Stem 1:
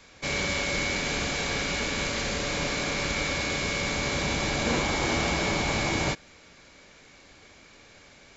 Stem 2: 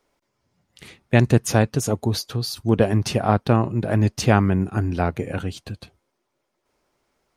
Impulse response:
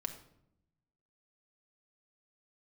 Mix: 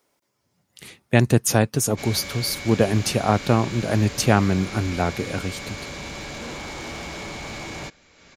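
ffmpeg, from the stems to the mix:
-filter_complex "[0:a]acompressor=mode=upward:threshold=0.0126:ratio=2.5,asoftclip=type=tanh:threshold=0.0501,adelay=1750,volume=0.668[s0];[1:a]highpass=84,highshelf=f=6700:g=10.5,volume=0.944[s1];[s0][s1]amix=inputs=2:normalize=0"

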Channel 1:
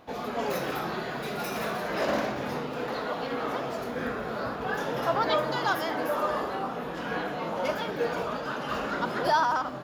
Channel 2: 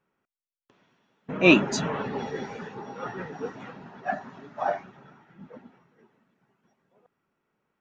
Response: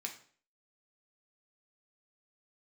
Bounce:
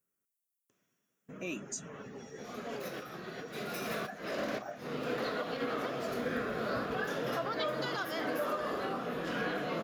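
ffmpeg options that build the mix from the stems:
-filter_complex "[0:a]highpass=f=95:p=1,alimiter=limit=0.0708:level=0:latency=1:release=339,adelay=2300,volume=1[s0];[1:a]aexciter=amount=13.7:drive=4:freq=6200,alimiter=limit=0.2:level=0:latency=1:release=238,volume=0.2,asplit=2[s1][s2];[s2]apad=whole_len=535052[s3];[s0][s3]sidechaincompress=threshold=0.00158:ratio=12:attack=12:release=147[s4];[s4][s1]amix=inputs=2:normalize=0,equalizer=f=880:w=3.6:g=-10.5"

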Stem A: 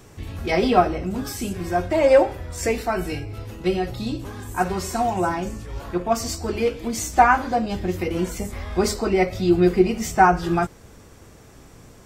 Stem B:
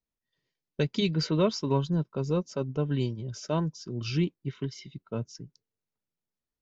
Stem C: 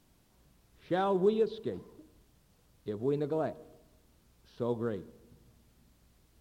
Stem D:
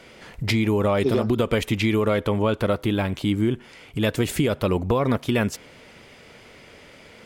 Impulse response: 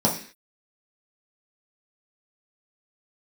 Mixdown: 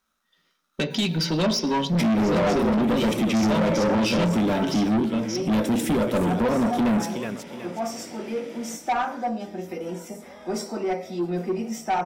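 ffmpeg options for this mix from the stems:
-filter_complex "[0:a]highpass=310,adelay=1700,volume=0.266,asplit=2[s0][s1];[s1]volume=0.211[s2];[1:a]equalizer=f=3200:w=0.49:g=12.5,alimiter=limit=0.178:level=0:latency=1:release=342,volume=1.41,asplit=3[s3][s4][s5];[s4]volume=0.141[s6];[2:a]asoftclip=type=hard:threshold=0.0316,aeval=exprs='val(0)*sgn(sin(2*PI*1300*n/s))':c=same,volume=0.266,asplit=2[s7][s8];[s8]volume=0.0631[s9];[3:a]highpass=f=130:w=0.5412,highpass=f=130:w=1.3066,adelay=1500,volume=0.75,asplit=3[s10][s11][s12];[s11]volume=0.224[s13];[s12]volume=0.473[s14];[s5]apad=whole_len=282412[s15];[s7][s15]sidechaincompress=threshold=0.0282:ratio=8:attack=16:release=777[s16];[4:a]atrim=start_sample=2205[s17];[s2][s6][s9][s13]amix=inputs=4:normalize=0[s18];[s18][s17]afir=irnorm=-1:irlink=0[s19];[s14]aecho=0:1:370|740|1110|1480|1850:1|0.36|0.13|0.0467|0.0168[s20];[s0][s3][s16][s10][s19][s20]amix=inputs=6:normalize=0,asoftclip=type=tanh:threshold=0.119"

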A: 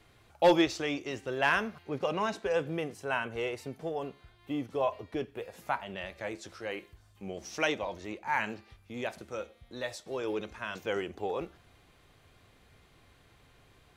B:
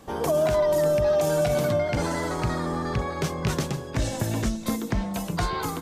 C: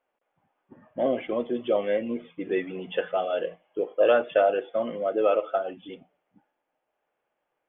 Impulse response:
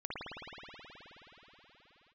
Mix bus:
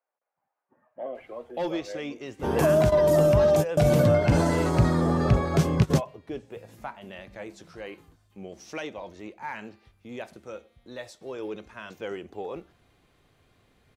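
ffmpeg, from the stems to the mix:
-filter_complex "[0:a]equalizer=f=88:w=0.57:g=-7.5,adelay=1150,volume=0.631[s0];[1:a]adelay=2350,volume=0.891[s1];[2:a]acrossover=split=540 2500:gain=0.1 1 0.0708[s2][s3][s4];[s2][s3][s4]amix=inputs=3:normalize=0,volume=0.398,asplit=2[s5][s6];[s6]apad=whole_len=359995[s7];[s1][s7]sidechaingate=range=0.0224:threshold=0.00112:ratio=16:detection=peak[s8];[s0][s5]amix=inputs=2:normalize=0,asoftclip=type=tanh:threshold=0.106,alimiter=level_in=1.19:limit=0.0631:level=0:latency=1:release=279,volume=0.841,volume=1[s9];[s8][s9]amix=inputs=2:normalize=0,equalizer=f=120:w=0.32:g=8.5"

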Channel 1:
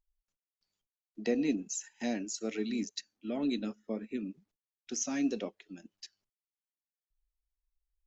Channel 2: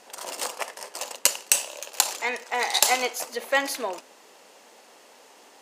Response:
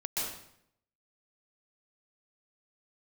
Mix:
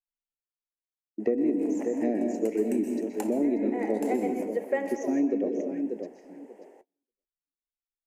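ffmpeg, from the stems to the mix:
-filter_complex "[0:a]volume=1,asplit=4[s0][s1][s2][s3];[s1]volume=0.447[s4];[s2]volume=0.398[s5];[1:a]adelay=1200,volume=0.473,asplit=2[s6][s7];[s7]volume=0.188[s8];[s3]apad=whole_len=300402[s9];[s6][s9]sidechaincompress=threshold=0.00891:ratio=8:attack=16:release=472[s10];[2:a]atrim=start_sample=2205[s11];[s4][s8]amix=inputs=2:normalize=0[s12];[s12][s11]afir=irnorm=-1:irlink=0[s13];[s5]aecho=0:1:587|1174|1761:1|0.17|0.0289[s14];[s0][s10][s13][s14]amix=inputs=4:normalize=0,agate=range=0.0355:threshold=0.00141:ratio=16:detection=peak,firequalizer=gain_entry='entry(170,0);entry(360,13);entry(780,3);entry(1200,-14);entry(1900,-2);entry(3700,-25);entry(7600,-13)':delay=0.05:min_phase=1,acompressor=threshold=0.0794:ratio=6"

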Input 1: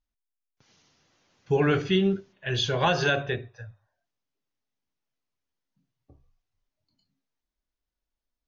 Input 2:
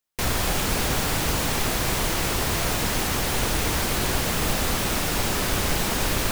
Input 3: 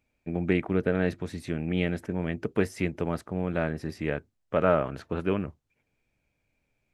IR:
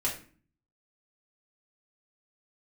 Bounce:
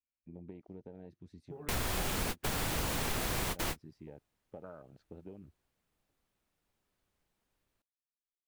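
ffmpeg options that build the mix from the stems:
-filter_complex "[0:a]lowshelf=f=97:g=-6,volume=0.282,asplit=2[s0][s1];[1:a]equalizer=f=5600:w=1.5:g=-2,adelay=1500,volume=0.631[s2];[2:a]equalizer=f=4700:w=0.97:g=9.5,volume=0.158[s3];[s1]apad=whole_len=344799[s4];[s2][s4]sidechaingate=range=0.002:threshold=0.00141:ratio=16:detection=peak[s5];[s0][s3]amix=inputs=2:normalize=0,afwtdn=0.00891,acompressor=threshold=0.00631:ratio=12,volume=1[s6];[s5][s6]amix=inputs=2:normalize=0,acompressor=threshold=0.0224:ratio=2.5"

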